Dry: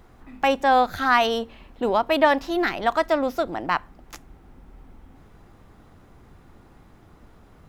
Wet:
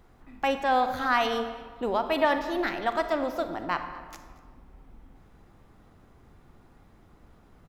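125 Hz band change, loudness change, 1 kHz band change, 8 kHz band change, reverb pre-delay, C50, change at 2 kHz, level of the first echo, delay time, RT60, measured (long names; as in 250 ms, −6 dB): −5.0 dB, −5.5 dB, −5.5 dB, −5.5 dB, 34 ms, 8.5 dB, −5.5 dB, −21.0 dB, 231 ms, 1.7 s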